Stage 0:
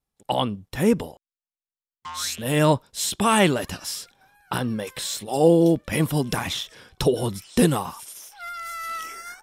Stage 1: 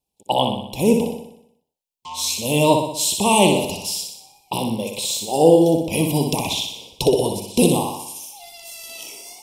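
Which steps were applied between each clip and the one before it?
Chebyshev band-stop filter 970–2,500 Hz, order 3
low-shelf EQ 170 Hz −9.5 dB
flutter between parallel walls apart 10.5 metres, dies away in 0.72 s
level +5 dB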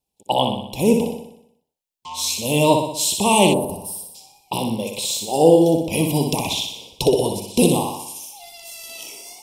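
gain on a spectral selection 0:03.53–0:04.15, 1,200–8,100 Hz −19 dB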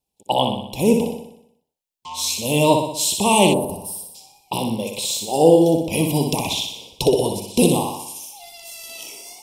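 no processing that can be heard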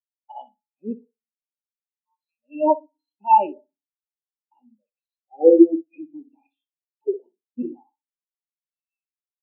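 loudspeaker in its box 270–4,400 Hz, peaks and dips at 470 Hz −7 dB, 1,500 Hz +8 dB, 2,500 Hz +6 dB, 3,600 Hz −6 dB
feedback delay network reverb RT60 1.4 s, low-frequency decay 1.35×, high-frequency decay 0.9×, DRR 13.5 dB
every bin expanded away from the loudest bin 4 to 1
level +1 dB

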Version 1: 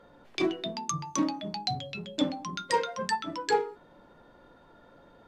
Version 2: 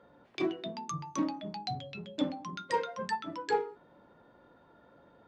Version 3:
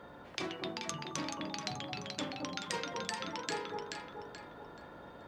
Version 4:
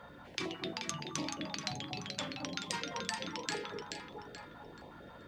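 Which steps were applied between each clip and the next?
high-pass filter 63 Hz; high-shelf EQ 4,800 Hz −11.5 dB; level −3.5 dB
delay that swaps between a low-pass and a high-pass 215 ms, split 980 Hz, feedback 51%, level −3 dB; every bin compressed towards the loudest bin 2 to 1; level +4 dB
notch on a step sequencer 11 Hz 340–1,500 Hz; level +1.5 dB

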